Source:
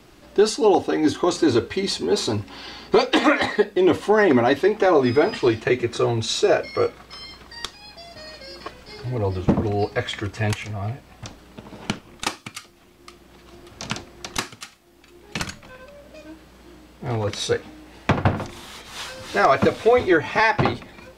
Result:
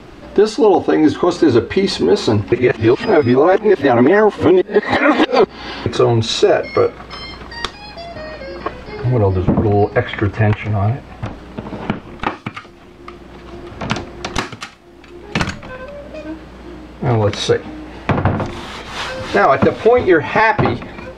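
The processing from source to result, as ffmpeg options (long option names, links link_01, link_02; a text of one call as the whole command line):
ffmpeg -i in.wav -filter_complex "[0:a]asettb=1/sr,asplit=3[link_01][link_02][link_03];[link_01]atrim=end=8.054[link_04];[link_02]atrim=start=8.05:end=13.9,asetpts=PTS-STARTPTS,afade=type=in:duration=0.004:curve=qsin,afade=type=out:start_time=5.846:duration=0.004:curve=qsin,acrossover=split=2800[link_05][link_06];[link_06]acompressor=threshold=-50dB:ratio=4:attack=1:release=60[link_07];[link_05][link_07]amix=inputs=2:normalize=0[link_08];[link_03]atrim=start=13.896[link_09];[link_04][link_08]acrossfade=duration=0.004:curve1=hsin:curve2=qsin[link_10];[link_10][link_09]acrossfade=duration=0.004:curve1=qsin:curve2=hsin,asplit=3[link_11][link_12][link_13];[link_11]atrim=end=2.522[link_14];[link_12]atrim=start=2.518:end=5.862,asetpts=PTS-STARTPTS,areverse[link_15];[link_13]atrim=start=5.858[link_16];[link_14][link_15]acrossfade=duration=0.004:curve1=hsin:curve2=hsin[link_17];[link_17][link_16]acrossfade=duration=0.004:curve1=hsin:curve2=hsin,aemphasis=mode=reproduction:type=75fm,acompressor=threshold=-25dB:ratio=2,alimiter=level_in=13.5dB:limit=-1dB:release=50:level=0:latency=1,volume=-1dB" out.wav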